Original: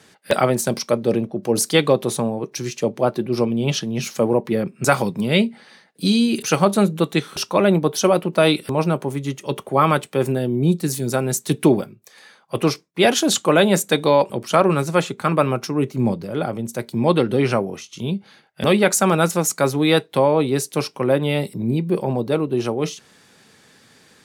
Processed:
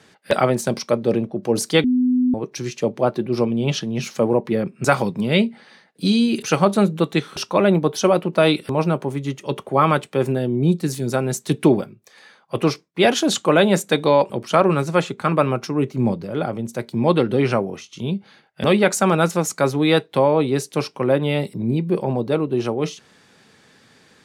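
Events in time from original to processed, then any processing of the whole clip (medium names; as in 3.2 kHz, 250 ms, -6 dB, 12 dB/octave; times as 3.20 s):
1.84–2.34 s: bleep 251 Hz -14 dBFS
whole clip: treble shelf 8.4 kHz -11 dB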